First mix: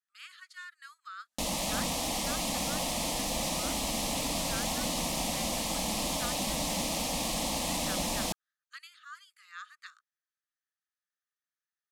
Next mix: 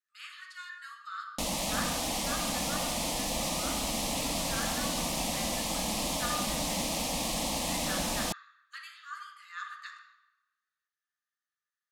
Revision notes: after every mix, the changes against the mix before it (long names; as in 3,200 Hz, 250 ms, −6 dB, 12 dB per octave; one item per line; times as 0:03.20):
reverb: on, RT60 1.2 s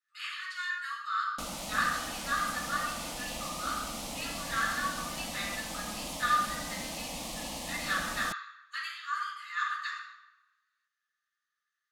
speech: send +10.5 dB
background −7.0 dB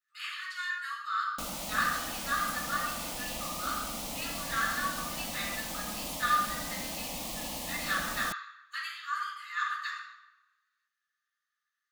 master: remove low-pass filter 11,000 Hz 12 dB per octave